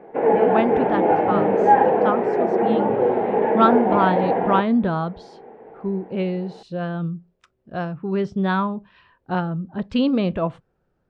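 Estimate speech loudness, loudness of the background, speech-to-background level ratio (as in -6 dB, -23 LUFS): -24.0 LUFS, -19.5 LUFS, -4.5 dB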